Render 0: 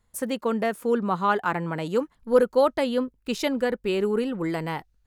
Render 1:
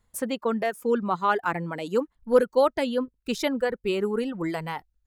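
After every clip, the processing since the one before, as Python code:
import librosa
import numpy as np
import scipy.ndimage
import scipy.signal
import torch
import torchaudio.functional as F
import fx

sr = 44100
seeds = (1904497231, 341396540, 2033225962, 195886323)

y = fx.dereverb_blind(x, sr, rt60_s=1.1)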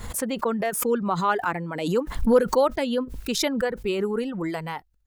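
y = fx.pre_swell(x, sr, db_per_s=55.0)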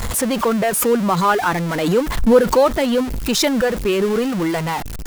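y = x + 0.5 * 10.0 ** (-26.5 / 20.0) * np.sign(x)
y = F.gain(torch.from_numpy(y), 5.0).numpy()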